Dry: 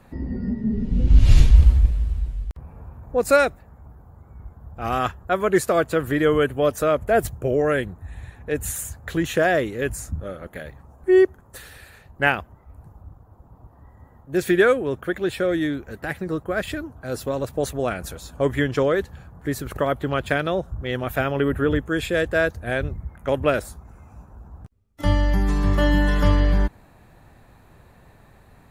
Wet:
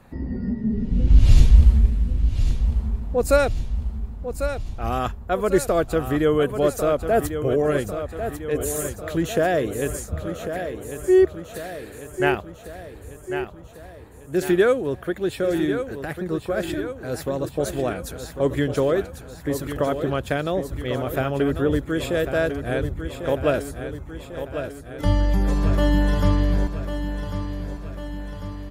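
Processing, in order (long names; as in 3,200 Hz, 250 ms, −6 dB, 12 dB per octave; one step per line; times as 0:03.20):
dynamic equaliser 1,800 Hz, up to −6 dB, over −38 dBFS, Q 0.93
repeating echo 1,097 ms, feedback 56%, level −9 dB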